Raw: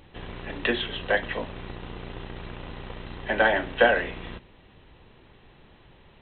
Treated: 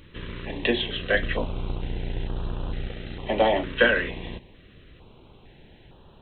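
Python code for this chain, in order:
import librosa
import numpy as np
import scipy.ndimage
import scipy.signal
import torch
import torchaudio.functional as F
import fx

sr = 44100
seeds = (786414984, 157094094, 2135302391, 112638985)

y = fx.low_shelf(x, sr, hz=90.0, db=10.5, at=(1.14, 2.88))
y = fx.filter_held_notch(y, sr, hz=2.2, low_hz=760.0, high_hz=2100.0)
y = F.gain(torch.from_numpy(y), 3.5).numpy()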